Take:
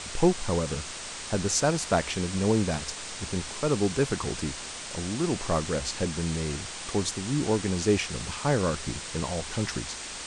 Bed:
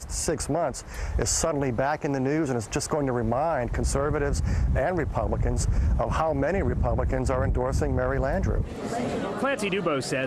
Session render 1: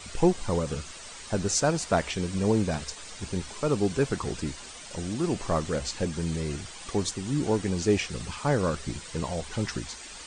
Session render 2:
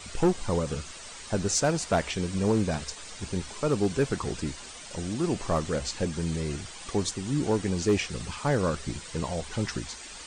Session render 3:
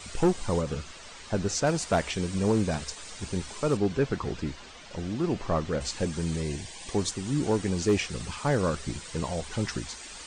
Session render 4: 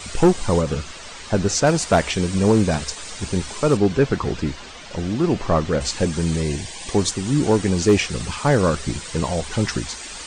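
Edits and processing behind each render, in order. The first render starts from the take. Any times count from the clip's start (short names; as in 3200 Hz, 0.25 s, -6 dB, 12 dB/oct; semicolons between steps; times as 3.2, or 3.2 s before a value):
denoiser 10 dB, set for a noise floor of -39 dBFS
hard clip -16.5 dBFS, distortion -20 dB
0.61–1.67 air absorption 67 m; 3.77–5.81 air absorption 120 m; 6.42–6.92 Butterworth band-stop 1300 Hz, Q 2.9
gain +8.5 dB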